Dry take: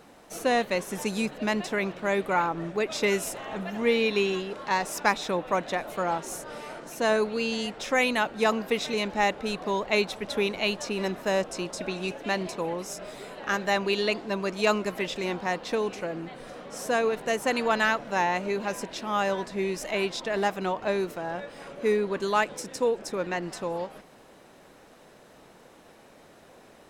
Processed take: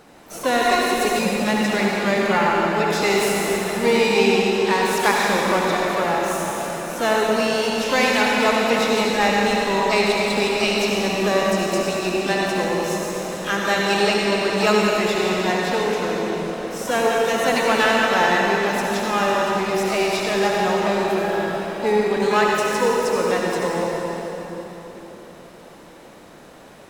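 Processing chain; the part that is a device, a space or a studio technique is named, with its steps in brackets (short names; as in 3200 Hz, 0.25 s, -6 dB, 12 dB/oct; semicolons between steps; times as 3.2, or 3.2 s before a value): shimmer-style reverb (harmoniser +12 st -10 dB; reverb RT60 3.9 s, pre-delay 60 ms, DRR -3 dB); 0.61–1.19 comb 2.8 ms, depth 79%; gain +3 dB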